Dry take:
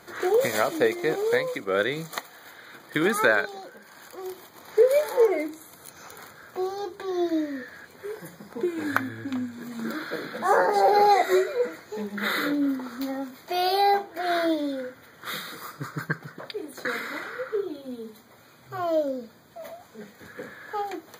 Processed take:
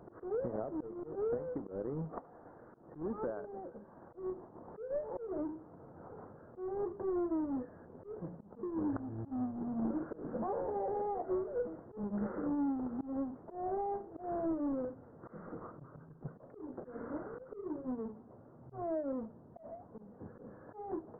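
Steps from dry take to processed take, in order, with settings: half-waves squared off; compressor 12:1, threshold -26 dBFS, peak gain reduction 15 dB; Gaussian blur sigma 9.6 samples; auto swell 0.166 s; gain -4.5 dB

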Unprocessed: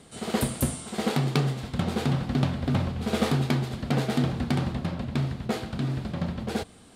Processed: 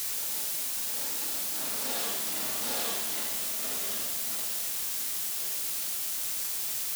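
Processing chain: Doppler pass-by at 2.77, 44 m/s, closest 2.9 m; HPF 460 Hz 12 dB/oct; reverse echo 0.816 s -6 dB; compressor 6:1, threshold -49 dBFS, peak gain reduction 20 dB; Schroeder reverb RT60 0.87 s, combs from 27 ms, DRR -8 dB; in parallel at -7 dB: requantised 6-bit, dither triangular; on the sum: high shelf 3100 Hz +12 dB

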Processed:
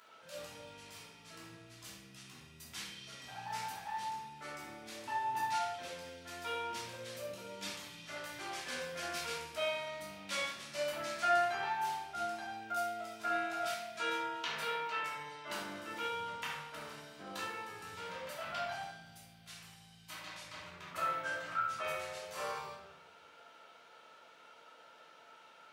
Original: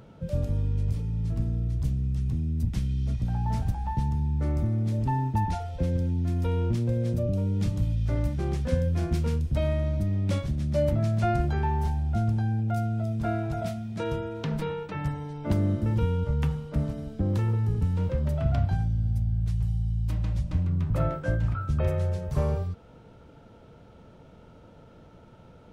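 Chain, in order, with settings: HPF 1300 Hz 12 dB/oct; shoebox room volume 300 m³, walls mixed, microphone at 3 m; gain -3 dB

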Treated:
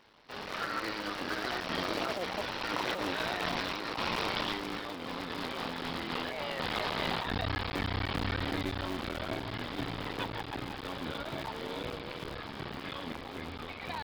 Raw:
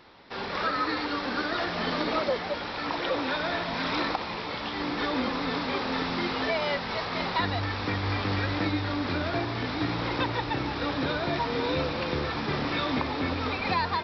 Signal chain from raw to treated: cycle switcher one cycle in 3, muted; Doppler pass-by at 4.93, 18 m/s, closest 22 m; negative-ratio compressor -38 dBFS, ratio -1; bell 3000 Hz +4.5 dB 0.32 oct; gain +3.5 dB

